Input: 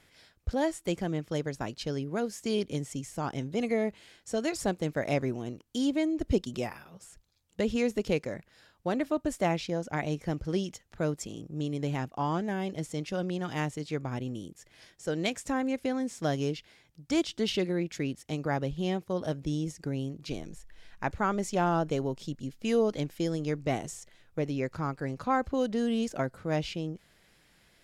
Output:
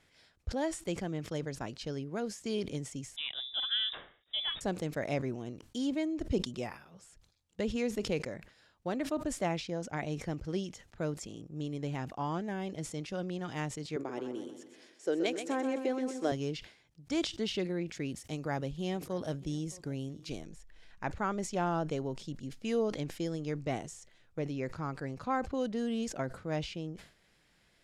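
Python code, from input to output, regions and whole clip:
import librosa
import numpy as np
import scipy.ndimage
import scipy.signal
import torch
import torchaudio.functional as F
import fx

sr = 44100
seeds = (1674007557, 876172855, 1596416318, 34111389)

y = fx.chain(x, sr, fx.freq_invert(carrier_hz=3700),
    fx.band_widen(depth_pct=40), at=(3.16, 4.61))
y = fx.chain(y, sr, fx.highpass_res(hz=360.0, q=2.7),
    fx.echo_feedback(ms=127, feedback_pct=47, wet_db=-8), at=(13.96, 16.32))
y = fx.chain(y, sr, fx.high_shelf(hz=7700.0, db=9.5),
    fx.echo_single(ms=617, db=-23.5), at=(18.03, 20.45))
y = scipy.signal.sosfilt(scipy.signal.butter(2, 10000.0, 'lowpass', fs=sr, output='sos'), y)
y = fx.sustainer(y, sr, db_per_s=120.0)
y = y * librosa.db_to_amplitude(-5.0)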